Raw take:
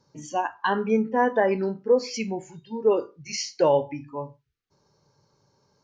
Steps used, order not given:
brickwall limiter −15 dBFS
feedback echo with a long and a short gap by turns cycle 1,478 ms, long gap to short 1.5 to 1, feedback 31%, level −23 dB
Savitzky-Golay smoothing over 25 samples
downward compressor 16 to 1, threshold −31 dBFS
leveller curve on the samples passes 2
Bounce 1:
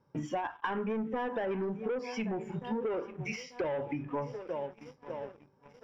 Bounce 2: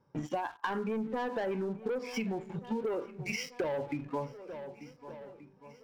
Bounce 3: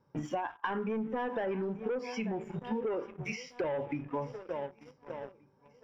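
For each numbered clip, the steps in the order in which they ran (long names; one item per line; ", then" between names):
feedback echo with a long and a short gap by turns, then brickwall limiter, then leveller curve on the samples, then downward compressor, then Savitzky-Golay smoothing
Savitzky-Golay smoothing, then leveller curve on the samples, then brickwall limiter, then feedback echo with a long and a short gap by turns, then downward compressor
feedback echo with a long and a short gap by turns, then leveller curve on the samples, then brickwall limiter, then downward compressor, then Savitzky-Golay smoothing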